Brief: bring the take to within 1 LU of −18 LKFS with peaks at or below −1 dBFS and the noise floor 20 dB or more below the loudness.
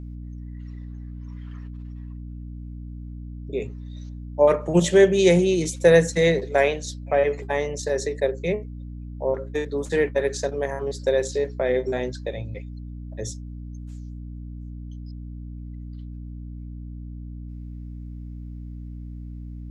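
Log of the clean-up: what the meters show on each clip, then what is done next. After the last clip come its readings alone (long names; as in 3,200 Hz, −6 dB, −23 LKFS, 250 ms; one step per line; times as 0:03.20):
mains hum 60 Hz; hum harmonics up to 300 Hz; level of the hum −33 dBFS; integrated loudness −22.5 LKFS; sample peak −4.5 dBFS; target loudness −18.0 LKFS
→ hum removal 60 Hz, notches 5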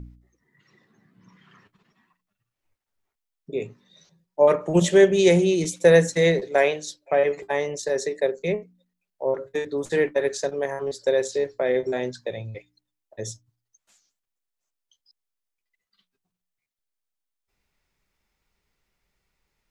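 mains hum none found; integrated loudness −22.5 LKFS; sample peak −4.5 dBFS; target loudness −18.0 LKFS
→ level +4.5 dB
brickwall limiter −1 dBFS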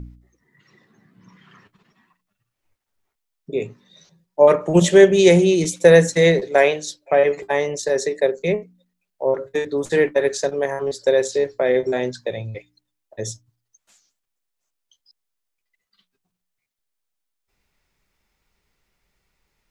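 integrated loudness −18.0 LKFS; sample peak −1.0 dBFS; background noise floor −79 dBFS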